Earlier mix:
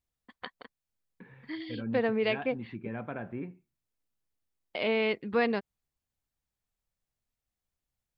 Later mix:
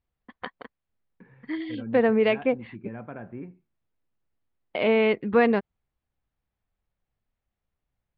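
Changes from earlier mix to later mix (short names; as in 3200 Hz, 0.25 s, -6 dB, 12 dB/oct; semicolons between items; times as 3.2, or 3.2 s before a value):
first voice +8.5 dB; master: add air absorption 380 m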